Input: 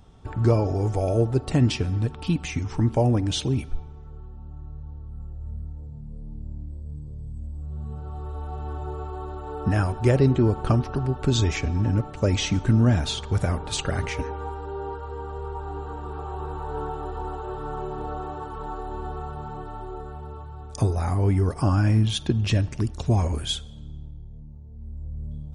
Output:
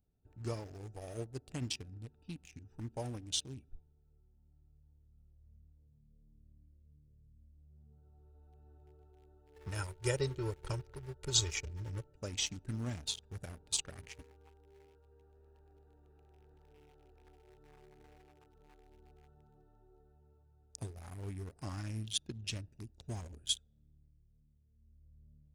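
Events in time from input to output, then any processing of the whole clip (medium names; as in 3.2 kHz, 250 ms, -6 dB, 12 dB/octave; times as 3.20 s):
9.56–12.17 s: comb 2.1 ms, depth 87%
14.85–17.27 s: overload inside the chain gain 30 dB
whole clip: local Wiener filter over 41 samples; pre-emphasis filter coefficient 0.9; upward expansion 1.5:1, over -51 dBFS; trim +3.5 dB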